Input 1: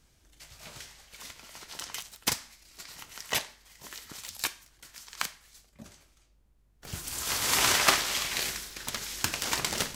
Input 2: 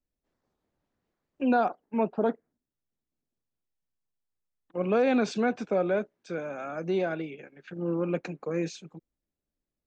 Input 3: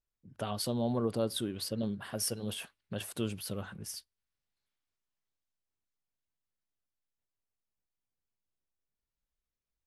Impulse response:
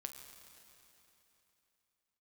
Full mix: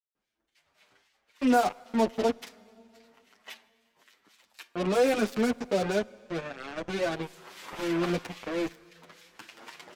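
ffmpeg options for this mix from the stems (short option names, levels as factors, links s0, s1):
-filter_complex "[0:a]acrossover=split=200 3600:gain=0.0891 1 0.224[s0][s1][s2];[s0][s1][s2]amix=inputs=3:normalize=0,acrossover=split=1600[s3][s4];[s3]aeval=exprs='val(0)*(1-0.7/2+0.7/2*cos(2*PI*3.7*n/s))':c=same[s5];[s4]aeval=exprs='val(0)*(1-0.7/2-0.7/2*cos(2*PI*3.7*n/s))':c=same[s6];[s5][s6]amix=inputs=2:normalize=0,adelay=150,volume=0.355,asplit=2[s7][s8];[s8]volume=0.398[s9];[1:a]acrusher=bits=4:mix=0:aa=0.5,volume=1.12,asplit=2[s10][s11];[s11]volume=0.299[s12];[3:a]atrim=start_sample=2205[s13];[s9][s12]amix=inputs=2:normalize=0[s14];[s14][s13]afir=irnorm=-1:irlink=0[s15];[s7][s10][s15]amix=inputs=3:normalize=0,asplit=2[s16][s17];[s17]adelay=7.8,afreqshift=1.2[s18];[s16][s18]amix=inputs=2:normalize=1"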